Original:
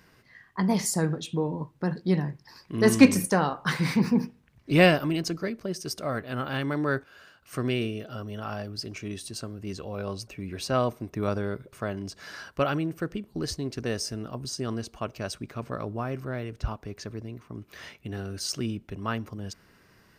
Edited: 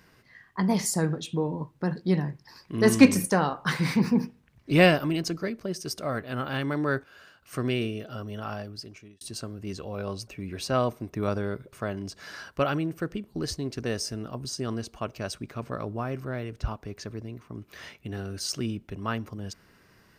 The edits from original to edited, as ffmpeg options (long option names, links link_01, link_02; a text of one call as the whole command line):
ffmpeg -i in.wav -filter_complex "[0:a]asplit=2[link_01][link_02];[link_01]atrim=end=9.21,asetpts=PTS-STARTPTS,afade=type=out:start_time=8.48:duration=0.73[link_03];[link_02]atrim=start=9.21,asetpts=PTS-STARTPTS,afade=type=in:duration=0.004:curve=hsin[link_04];[link_03][link_04]concat=n=2:v=0:a=1" out.wav